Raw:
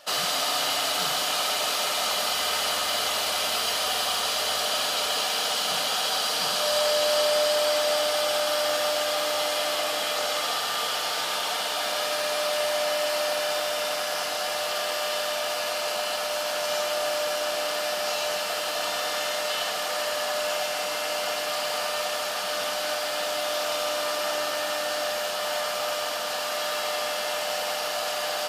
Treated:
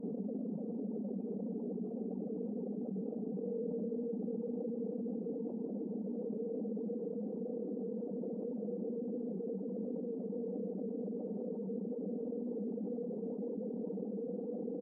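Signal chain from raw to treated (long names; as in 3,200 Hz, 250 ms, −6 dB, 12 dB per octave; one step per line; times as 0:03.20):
reverb reduction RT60 0.62 s
elliptic high-pass filter 200 Hz
time stretch by overlap-add 0.52×, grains 101 ms
inverse Chebyshev low-pass filter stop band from 1,900 Hz, stop band 80 dB
formants moved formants −4 semitones
single-tap delay 649 ms −11.5 dB
reverb reduction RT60 0.61 s
on a send: single-tap delay 985 ms −15.5 dB
on the sum: envelope flattener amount 70%
level +11 dB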